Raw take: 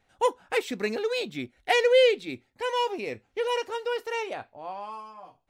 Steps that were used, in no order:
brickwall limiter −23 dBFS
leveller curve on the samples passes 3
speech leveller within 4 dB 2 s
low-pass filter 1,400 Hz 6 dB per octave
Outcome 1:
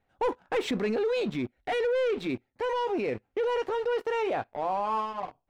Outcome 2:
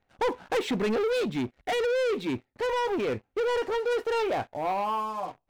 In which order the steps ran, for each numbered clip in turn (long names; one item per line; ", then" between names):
leveller curve on the samples, then low-pass filter, then brickwall limiter, then speech leveller
low-pass filter, then brickwall limiter, then leveller curve on the samples, then speech leveller